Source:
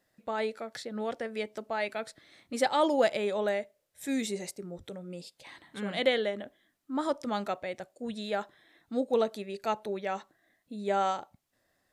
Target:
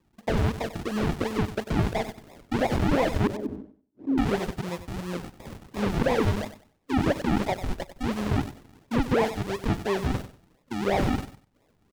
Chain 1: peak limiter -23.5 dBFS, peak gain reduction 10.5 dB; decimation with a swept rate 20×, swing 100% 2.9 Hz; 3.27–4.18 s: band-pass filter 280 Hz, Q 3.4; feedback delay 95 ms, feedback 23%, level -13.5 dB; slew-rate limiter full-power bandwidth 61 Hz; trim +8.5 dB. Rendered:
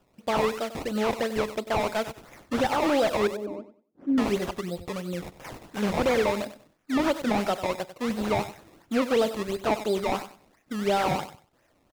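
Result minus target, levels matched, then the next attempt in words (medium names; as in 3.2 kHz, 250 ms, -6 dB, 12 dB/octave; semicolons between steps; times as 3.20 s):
decimation with a swept rate: distortion -15 dB
peak limiter -23.5 dBFS, peak gain reduction 10.5 dB; decimation with a swept rate 58×, swing 100% 2.9 Hz; 3.27–4.18 s: band-pass filter 280 Hz, Q 3.4; feedback delay 95 ms, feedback 23%, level -13.5 dB; slew-rate limiter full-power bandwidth 61 Hz; trim +8.5 dB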